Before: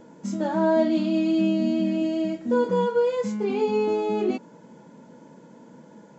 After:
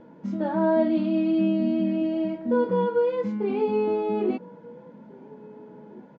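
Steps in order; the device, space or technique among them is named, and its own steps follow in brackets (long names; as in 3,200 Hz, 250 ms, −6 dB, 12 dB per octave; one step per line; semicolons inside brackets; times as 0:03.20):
shout across a valley (high-frequency loss of the air 310 metres; slap from a distant wall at 290 metres, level −22 dB)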